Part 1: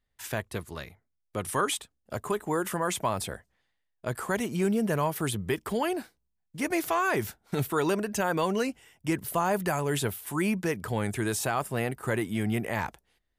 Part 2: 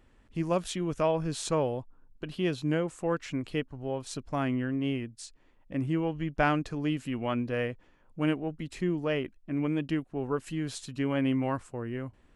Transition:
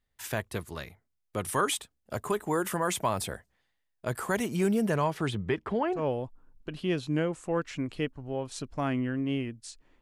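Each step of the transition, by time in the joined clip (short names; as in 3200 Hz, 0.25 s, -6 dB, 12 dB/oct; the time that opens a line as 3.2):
part 1
4.89–6.08 LPF 8200 Hz -> 1200 Hz
6 switch to part 2 from 1.55 s, crossfade 0.16 s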